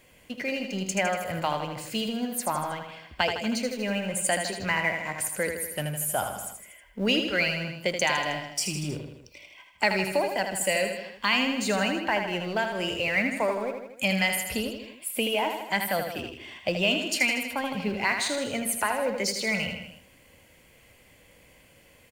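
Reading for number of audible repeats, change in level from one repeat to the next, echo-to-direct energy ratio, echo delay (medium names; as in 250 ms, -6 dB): 4, -4.5 dB, -4.5 dB, 79 ms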